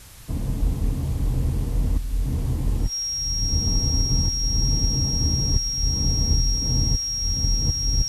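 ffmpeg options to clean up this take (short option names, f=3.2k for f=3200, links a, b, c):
-af "bandreject=f=5.6k:w=30,afwtdn=0.005"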